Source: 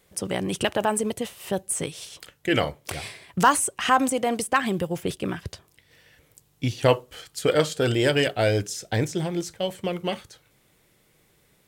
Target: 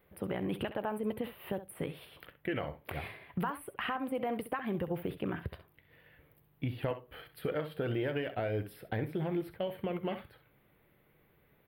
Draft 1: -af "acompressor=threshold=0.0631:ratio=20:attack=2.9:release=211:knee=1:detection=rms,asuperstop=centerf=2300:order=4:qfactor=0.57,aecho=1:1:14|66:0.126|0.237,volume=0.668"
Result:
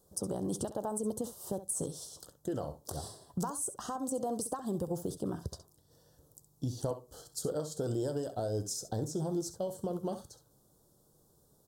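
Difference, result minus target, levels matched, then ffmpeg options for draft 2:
8 kHz band +20.0 dB
-af "acompressor=threshold=0.0631:ratio=20:attack=2.9:release=211:knee=1:detection=rms,asuperstop=centerf=6600:order=4:qfactor=0.57,aecho=1:1:14|66:0.126|0.237,volume=0.668"

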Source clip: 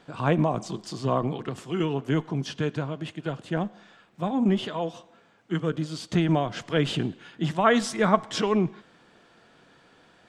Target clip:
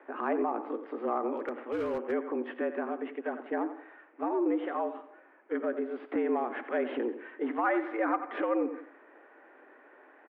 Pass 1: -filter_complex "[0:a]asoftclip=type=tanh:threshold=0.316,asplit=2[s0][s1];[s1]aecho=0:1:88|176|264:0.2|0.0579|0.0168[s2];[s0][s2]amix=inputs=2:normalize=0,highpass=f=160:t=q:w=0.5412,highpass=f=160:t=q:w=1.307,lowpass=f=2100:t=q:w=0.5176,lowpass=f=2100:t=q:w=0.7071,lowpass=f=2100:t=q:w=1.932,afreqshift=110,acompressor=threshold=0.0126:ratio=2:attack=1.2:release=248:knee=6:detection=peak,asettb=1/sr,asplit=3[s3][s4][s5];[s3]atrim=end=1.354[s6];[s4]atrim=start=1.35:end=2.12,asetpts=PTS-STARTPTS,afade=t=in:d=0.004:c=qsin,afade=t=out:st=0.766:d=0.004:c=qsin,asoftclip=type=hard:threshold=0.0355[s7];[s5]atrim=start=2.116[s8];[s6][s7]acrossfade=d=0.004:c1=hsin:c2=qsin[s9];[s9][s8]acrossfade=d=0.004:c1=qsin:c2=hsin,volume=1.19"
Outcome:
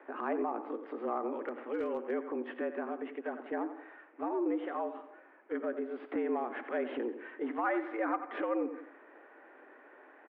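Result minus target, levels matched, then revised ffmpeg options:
compression: peak gain reduction +4 dB
-filter_complex "[0:a]asoftclip=type=tanh:threshold=0.316,asplit=2[s0][s1];[s1]aecho=0:1:88|176|264:0.2|0.0579|0.0168[s2];[s0][s2]amix=inputs=2:normalize=0,highpass=f=160:t=q:w=0.5412,highpass=f=160:t=q:w=1.307,lowpass=f=2100:t=q:w=0.5176,lowpass=f=2100:t=q:w=0.7071,lowpass=f=2100:t=q:w=1.932,afreqshift=110,acompressor=threshold=0.0299:ratio=2:attack=1.2:release=248:knee=6:detection=peak,asettb=1/sr,asplit=3[s3][s4][s5];[s3]atrim=end=1.354[s6];[s4]atrim=start=1.35:end=2.12,asetpts=PTS-STARTPTS,afade=t=in:d=0.004:c=qsin,afade=t=out:st=0.766:d=0.004:c=qsin,asoftclip=type=hard:threshold=0.0355[s7];[s5]atrim=start=2.116[s8];[s6][s7]acrossfade=d=0.004:c1=hsin:c2=qsin[s9];[s9][s8]acrossfade=d=0.004:c1=qsin:c2=hsin,volume=1.19"

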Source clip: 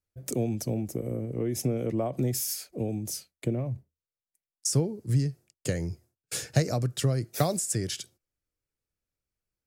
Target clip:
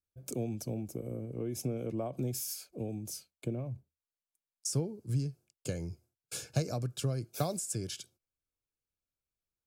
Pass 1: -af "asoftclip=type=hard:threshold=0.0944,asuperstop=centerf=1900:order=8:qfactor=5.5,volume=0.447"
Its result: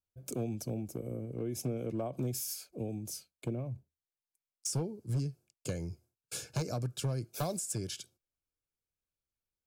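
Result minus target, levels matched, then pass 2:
hard clipper: distortion +25 dB
-af "asoftclip=type=hard:threshold=0.251,asuperstop=centerf=1900:order=8:qfactor=5.5,volume=0.447"

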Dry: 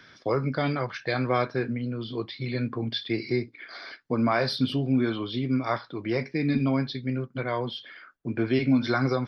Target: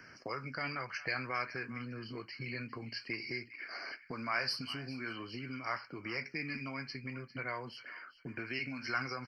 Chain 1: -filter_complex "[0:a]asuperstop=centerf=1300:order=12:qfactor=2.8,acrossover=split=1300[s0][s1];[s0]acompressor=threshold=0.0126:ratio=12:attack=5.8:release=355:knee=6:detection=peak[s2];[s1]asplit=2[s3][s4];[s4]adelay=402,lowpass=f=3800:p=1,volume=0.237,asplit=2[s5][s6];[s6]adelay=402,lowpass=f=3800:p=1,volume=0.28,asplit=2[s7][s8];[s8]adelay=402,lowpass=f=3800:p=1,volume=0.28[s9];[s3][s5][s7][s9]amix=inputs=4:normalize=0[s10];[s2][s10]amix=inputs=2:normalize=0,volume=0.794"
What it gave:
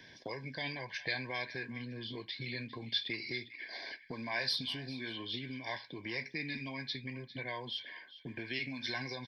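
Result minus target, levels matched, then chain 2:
1 kHz band -6.0 dB
-filter_complex "[0:a]asuperstop=centerf=3600:order=12:qfactor=2.8,acrossover=split=1300[s0][s1];[s0]acompressor=threshold=0.0126:ratio=12:attack=5.8:release=355:knee=6:detection=peak[s2];[s1]asplit=2[s3][s4];[s4]adelay=402,lowpass=f=3800:p=1,volume=0.237,asplit=2[s5][s6];[s6]adelay=402,lowpass=f=3800:p=1,volume=0.28,asplit=2[s7][s8];[s8]adelay=402,lowpass=f=3800:p=1,volume=0.28[s9];[s3][s5][s7][s9]amix=inputs=4:normalize=0[s10];[s2][s10]amix=inputs=2:normalize=0,volume=0.794"

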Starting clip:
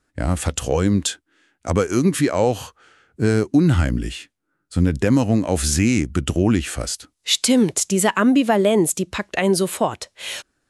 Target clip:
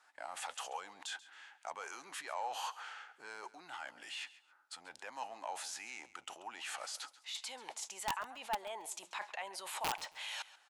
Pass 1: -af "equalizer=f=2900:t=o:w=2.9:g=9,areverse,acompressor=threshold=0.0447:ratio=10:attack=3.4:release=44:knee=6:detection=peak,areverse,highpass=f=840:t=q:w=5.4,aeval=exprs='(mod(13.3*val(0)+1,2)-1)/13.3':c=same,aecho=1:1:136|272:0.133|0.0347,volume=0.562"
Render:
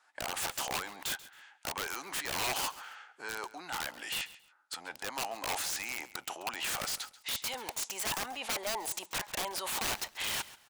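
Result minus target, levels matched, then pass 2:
compression: peak gain reduction -9.5 dB
-af "equalizer=f=2900:t=o:w=2.9:g=9,areverse,acompressor=threshold=0.0133:ratio=10:attack=3.4:release=44:knee=6:detection=peak,areverse,highpass=f=840:t=q:w=5.4,aeval=exprs='(mod(13.3*val(0)+1,2)-1)/13.3':c=same,aecho=1:1:136|272:0.133|0.0347,volume=0.562"

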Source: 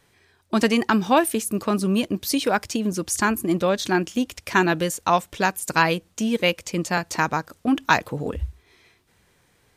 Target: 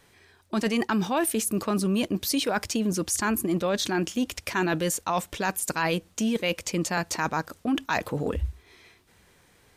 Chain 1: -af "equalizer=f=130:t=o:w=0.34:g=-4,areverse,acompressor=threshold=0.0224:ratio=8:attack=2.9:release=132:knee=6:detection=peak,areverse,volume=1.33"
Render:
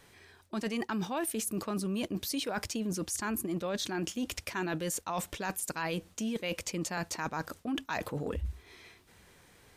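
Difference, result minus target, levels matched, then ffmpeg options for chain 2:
compression: peak gain reduction +8.5 dB
-af "equalizer=f=130:t=o:w=0.34:g=-4,areverse,acompressor=threshold=0.0708:ratio=8:attack=2.9:release=132:knee=6:detection=peak,areverse,volume=1.33"

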